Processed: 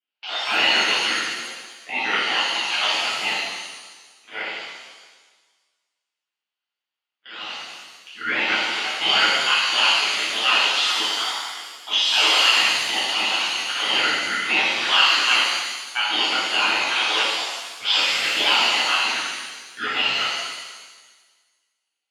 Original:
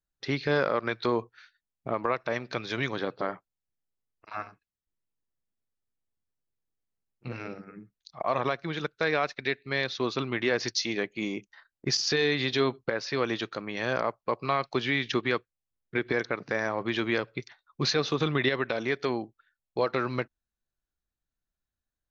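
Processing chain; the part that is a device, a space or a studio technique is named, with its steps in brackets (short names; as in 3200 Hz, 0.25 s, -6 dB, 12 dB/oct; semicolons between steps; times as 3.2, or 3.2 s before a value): Chebyshev band-pass 560–5100 Hz, order 5; tilt shelf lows -4.5 dB; voice changer toy (ring modulator with a swept carrier 1100 Hz, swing 35%, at 3.1 Hz; speaker cabinet 410–3900 Hz, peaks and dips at 490 Hz -6 dB, 1400 Hz +5 dB, 2900 Hz +7 dB); shimmer reverb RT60 1.4 s, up +7 st, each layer -8 dB, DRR -11 dB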